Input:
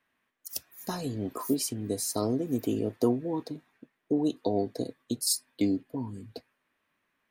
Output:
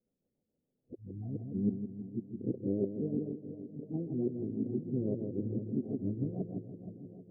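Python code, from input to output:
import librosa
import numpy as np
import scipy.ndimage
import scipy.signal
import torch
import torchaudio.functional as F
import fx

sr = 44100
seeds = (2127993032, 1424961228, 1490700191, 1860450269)

p1 = x[::-1].copy()
p2 = scipy.signal.sosfilt(scipy.signal.butter(8, 770.0, 'lowpass', fs=sr, output='sos'), p1)
p3 = fx.rider(p2, sr, range_db=4, speed_s=0.5)
p4 = p2 + (p3 * 10.0 ** (3.0 / 20.0))
p5 = fx.echo_feedback(p4, sr, ms=163, feedback_pct=47, wet_db=-6)
p6 = fx.rotary(p5, sr, hz=7.0)
p7 = fx.formant_shift(p6, sr, semitones=-4)
p8 = fx.echo_swing(p7, sr, ms=787, ratio=1.5, feedback_pct=45, wet_db=-13)
p9 = fx.am_noise(p8, sr, seeds[0], hz=5.7, depth_pct=55)
y = p9 * 10.0 ** (-8.0 / 20.0)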